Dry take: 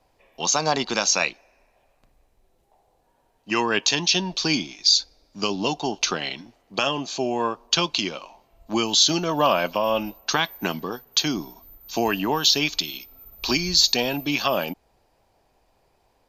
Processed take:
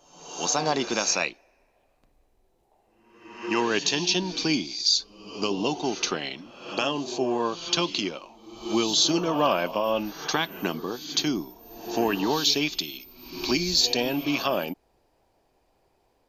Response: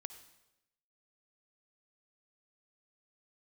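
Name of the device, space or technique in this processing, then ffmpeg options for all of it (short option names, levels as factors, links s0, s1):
reverse reverb: -filter_complex "[0:a]equalizer=f=340:t=o:w=1.1:g=5,areverse[s0];[1:a]atrim=start_sample=2205[s1];[s0][s1]afir=irnorm=-1:irlink=0,areverse"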